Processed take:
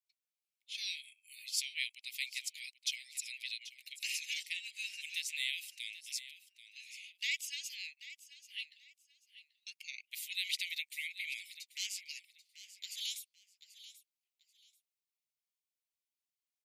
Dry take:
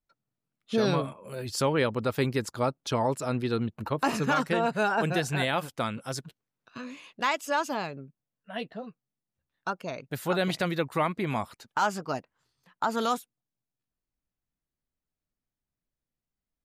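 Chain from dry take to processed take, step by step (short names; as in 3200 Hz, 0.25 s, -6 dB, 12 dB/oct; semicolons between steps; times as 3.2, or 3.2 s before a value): steep high-pass 2100 Hz 96 dB/oct; vocal rider 2 s; feedback echo 0.786 s, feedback 23%, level -15 dB; gain -1 dB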